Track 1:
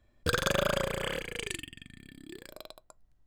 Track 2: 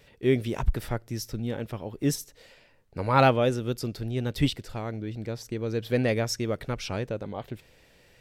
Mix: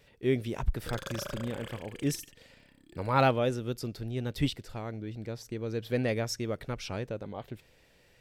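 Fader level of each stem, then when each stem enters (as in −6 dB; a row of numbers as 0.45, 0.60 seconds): −11.5, −4.5 decibels; 0.60, 0.00 seconds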